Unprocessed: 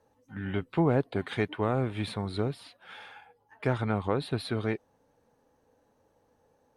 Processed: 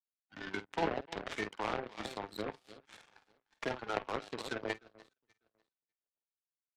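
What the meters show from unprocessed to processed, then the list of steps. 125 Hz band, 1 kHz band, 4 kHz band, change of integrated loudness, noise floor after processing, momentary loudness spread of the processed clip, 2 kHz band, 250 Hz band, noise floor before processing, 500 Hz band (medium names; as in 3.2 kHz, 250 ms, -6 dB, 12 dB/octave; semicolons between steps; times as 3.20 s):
-20.5 dB, -3.5 dB, -4.0 dB, -8.5 dB, under -85 dBFS, 20 LU, -2.5 dB, -12.5 dB, -70 dBFS, -8.5 dB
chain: coarse spectral quantiser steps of 30 dB; frequency weighting A; reverb removal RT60 0.98 s; low-pass that closes with the level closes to 1.2 kHz, closed at -27 dBFS; bass shelf 150 Hz +5 dB; saturation -28.5 dBFS, distortion -10 dB; doubling 48 ms -5 dB; echo whose repeats swap between lows and highs 299 ms, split 1.5 kHz, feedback 52%, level -7 dB; power-law waveshaper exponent 3; three bands compressed up and down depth 70%; trim +11 dB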